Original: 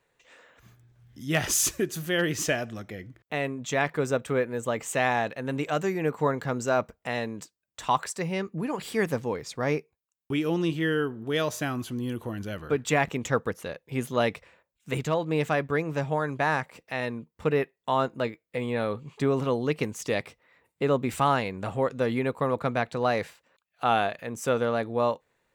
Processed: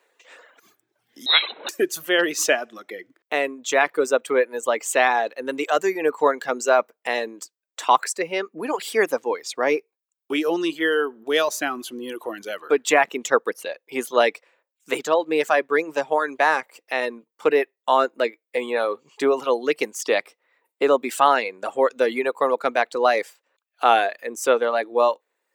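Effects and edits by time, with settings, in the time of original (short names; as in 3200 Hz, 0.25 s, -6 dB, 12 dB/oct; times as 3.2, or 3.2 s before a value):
1.26–1.69 inverted band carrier 4000 Hz
whole clip: reverb removal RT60 1.1 s; HPF 320 Hz 24 dB/oct; gain +8 dB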